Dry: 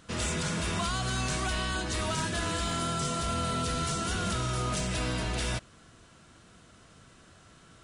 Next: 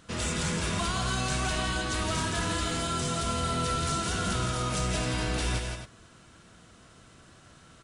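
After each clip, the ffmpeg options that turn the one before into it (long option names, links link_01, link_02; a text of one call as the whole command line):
ffmpeg -i in.wav -af "aecho=1:1:166.2|265.3:0.562|0.316" out.wav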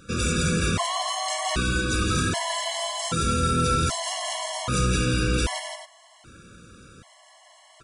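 ffmpeg -i in.wav -af "afftfilt=real='re*gt(sin(2*PI*0.64*pts/sr)*(1-2*mod(floor(b*sr/1024/560),2)),0)':imag='im*gt(sin(2*PI*0.64*pts/sr)*(1-2*mod(floor(b*sr/1024/560),2)),0)':win_size=1024:overlap=0.75,volume=7.5dB" out.wav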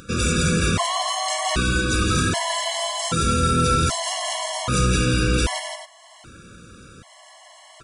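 ffmpeg -i in.wav -af "acompressor=mode=upward:threshold=-45dB:ratio=2.5,volume=3.5dB" out.wav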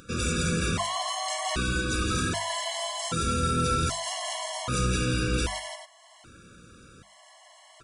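ffmpeg -i in.wav -af "bandreject=frequency=50:width_type=h:width=6,bandreject=frequency=100:width_type=h:width=6,bandreject=frequency=150:width_type=h:width=6,bandreject=frequency=200:width_type=h:width=6,volume=-6.5dB" out.wav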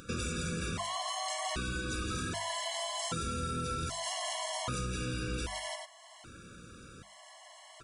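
ffmpeg -i in.wav -af "acompressor=threshold=-33dB:ratio=6" out.wav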